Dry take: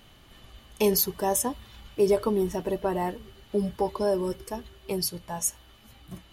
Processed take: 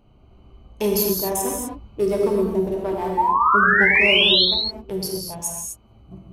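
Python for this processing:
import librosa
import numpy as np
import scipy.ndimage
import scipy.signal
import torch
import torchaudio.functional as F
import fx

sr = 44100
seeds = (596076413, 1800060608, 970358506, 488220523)

y = fx.wiener(x, sr, points=25)
y = fx.spec_paint(y, sr, seeds[0], shape='rise', start_s=3.17, length_s=1.28, low_hz=860.0, high_hz=4400.0, level_db=-20.0)
y = fx.rev_gated(y, sr, seeds[1], gate_ms=280, shape='flat', drr_db=-1.5)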